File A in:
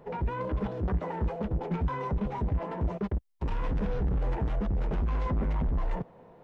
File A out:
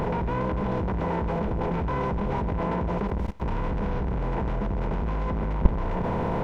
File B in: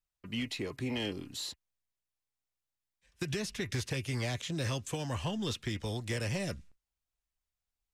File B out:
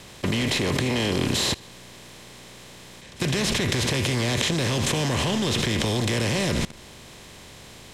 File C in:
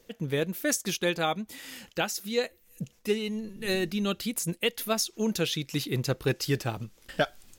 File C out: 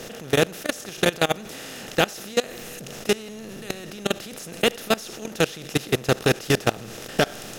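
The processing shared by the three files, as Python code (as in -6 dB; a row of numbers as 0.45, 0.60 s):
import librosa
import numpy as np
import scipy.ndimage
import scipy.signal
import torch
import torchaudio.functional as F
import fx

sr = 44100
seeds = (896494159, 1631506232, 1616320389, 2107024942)

y = fx.bin_compress(x, sr, power=0.4)
y = fx.echo_feedback(y, sr, ms=78, feedback_pct=40, wet_db=-15.5)
y = fx.level_steps(y, sr, step_db=21)
y = y * 10.0 ** (-26 / 20.0) / np.sqrt(np.mean(np.square(y)))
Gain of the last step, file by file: +15.5, +18.5, +4.5 dB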